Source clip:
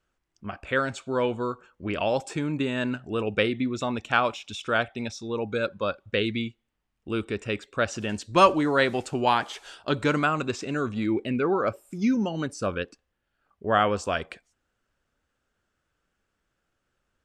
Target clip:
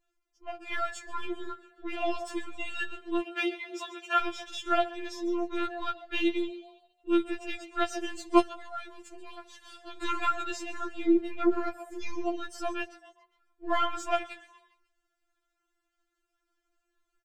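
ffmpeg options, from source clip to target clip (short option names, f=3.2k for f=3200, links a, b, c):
-filter_complex "[0:a]aeval=exprs='if(lt(val(0),0),0.708*val(0),val(0))':c=same,asettb=1/sr,asplit=3[a][b][c];[a]atrim=end=3.204[d];[b]atrim=start=3.2:end=4.21,asetpts=PTS-STARTPTS,afade=t=in:d=0.004:c=qsin,afade=t=out:st=1.006:d=0.004:c=qsin,highpass=f=560:p=1[e];[c]atrim=start=4.206[f];[d][e]acrossfade=d=0.004:c1=hsin:c2=qsin[g];[g][f]acrossfade=d=0.004:c1=qsin:c2=hsin,asplit=3[h][i][j];[h]afade=t=out:st=8.39:d=0.02[k];[i]acompressor=threshold=-38dB:ratio=4,afade=t=in:st=8.39:d=0.02,afade=t=out:st=9.95:d=0.02[l];[j]afade=t=in:st=9.95:d=0.02[m];[k][l][m]amix=inputs=3:normalize=0,asplit=5[n][o][p][q][r];[o]adelay=136,afreqshift=120,volume=-17dB[s];[p]adelay=272,afreqshift=240,volume=-23.4dB[t];[q]adelay=408,afreqshift=360,volume=-29.8dB[u];[r]adelay=544,afreqshift=480,volume=-36.1dB[v];[n][s][t][u][v]amix=inputs=5:normalize=0,afftfilt=real='re*4*eq(mod(b,16),0)':imag='im*4*eq(mod(b,16),0)':win_size=2048:overlap=0.75"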